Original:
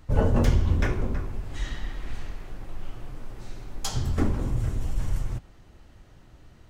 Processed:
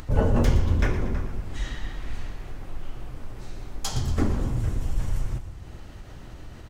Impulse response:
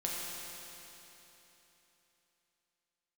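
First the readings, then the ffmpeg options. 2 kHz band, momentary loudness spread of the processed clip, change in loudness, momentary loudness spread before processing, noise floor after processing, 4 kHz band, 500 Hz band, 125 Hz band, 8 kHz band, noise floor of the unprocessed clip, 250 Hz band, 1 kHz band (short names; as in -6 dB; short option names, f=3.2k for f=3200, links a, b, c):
+1.0 dB, 21 LU, +0.5 dB, 20 LU, -42 dBFS, +1.0 dB, +1.0 dB, +0.5 dB, +1.0 dB, -52 dBFS, +1.0 dB, +1.0 dB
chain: -filter_complex "[0:a]acompressor=mode=upward:threshold=-31dB:ratio=2.5,asplit=7[a][b][c][d][e][f][g];[b]adelay=117,afreqshift=-32,volume=-12dB[h];[c]adelay=234,afreqshift=-64,volume=-16.9dB[i];[d]adelay=351,afreqshift=-96,volume=-21.8dB[j];[e]adelay=468,afreqshift=-128,volume=-26.6dB[k];[f]adelay=585,afreqshift=-160,volume=-31.5dB[l];[g]adelay=702,afreqshift=-192,volume=-36.4dB[m];[a][h][i][j][k][l][m]amix=inputs=7:normalize=0,asplit=2[n][o];[1:a]atrim=start_sample=2205[p];[o][p]afir=irnorm=-1:irlink=0,volume=-22.5dB[q];[n][q]amix=inputs=2:normalize=0"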